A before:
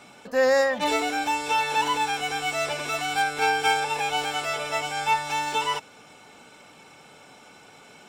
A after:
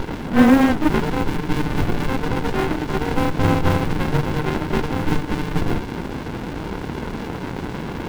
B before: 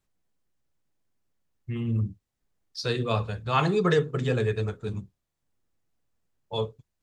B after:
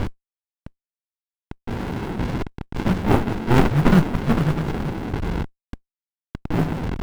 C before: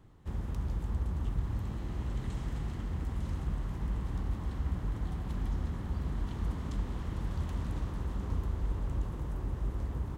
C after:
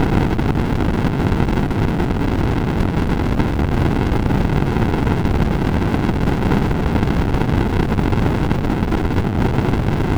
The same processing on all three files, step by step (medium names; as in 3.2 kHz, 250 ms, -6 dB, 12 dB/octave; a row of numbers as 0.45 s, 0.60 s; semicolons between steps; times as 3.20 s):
one-bit delta coder 16 kbps, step -26.5 dBFS; mistuned SSB -280 Hz 530–2200 Hz; modulation noise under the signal 25 dB; sliding maximum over 65 samples; peak normalisation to -3 dBFS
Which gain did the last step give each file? +13.5 dB, +16.0 dB, +25.0 dB